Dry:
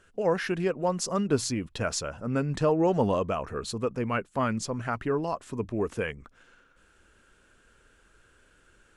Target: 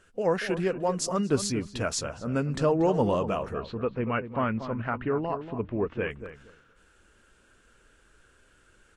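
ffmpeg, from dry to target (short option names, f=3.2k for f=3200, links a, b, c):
-filter_complex "[0:a]asettb=1/sr,asplit=3[a][b][c];[a]atrim=end=3.544[d];[b]atrim=start=3.54:end=6.11,asetpts=PTS-STARTPTS,afade=t=in:d=0.004:c=qsin,afade=t=out:st=2.566:d=0.004:c=qsin,lowpass=f=3.1k:w=0.5412,lowpass=f=3.1k:w=1.3066[e];[c]atrim=start=6.106[f];[d][e]acrossfade=d=0.004:c1=hsin:c2=qsin[g];[g][f]acrossfade=d=0.004:c1=qsin:c2=hsin,asplit=2[h][i];[i]adelay=235,lowpass=f=1.4k:p=1,volume=-10dB,asplit=2[j][k];[k]adelay=235,lowpass=f=1.4k:p=1,volume=0.2,asplit=2[l][m];[m]adelay=235,lowpass=f=1.4k:p=1,volume=0.2[n];[h][j][l][n]amix=inputs=4:normalize=0" -ar 44100 -c:a libvorbis -b:a 48k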